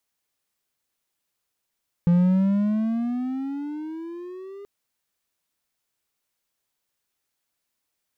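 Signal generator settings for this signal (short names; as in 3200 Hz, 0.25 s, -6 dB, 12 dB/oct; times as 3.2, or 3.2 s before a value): gliding synth tone triangle, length 2.58 s, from 171 Hz, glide +15 st, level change -23 dB, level -12 dB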